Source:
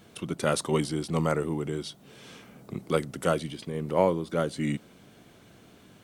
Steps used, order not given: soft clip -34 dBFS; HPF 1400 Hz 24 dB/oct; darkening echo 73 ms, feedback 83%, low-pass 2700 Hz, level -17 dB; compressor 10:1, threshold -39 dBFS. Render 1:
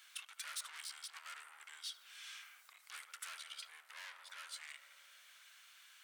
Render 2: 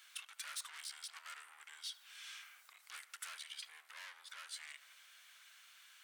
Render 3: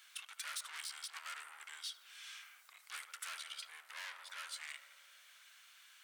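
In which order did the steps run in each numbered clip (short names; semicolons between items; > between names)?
darkening echo > soft clip > compressor > HPF; soft clip > darkening echo > compressor > HPF; darkening echo > soft clip > HPF > compressor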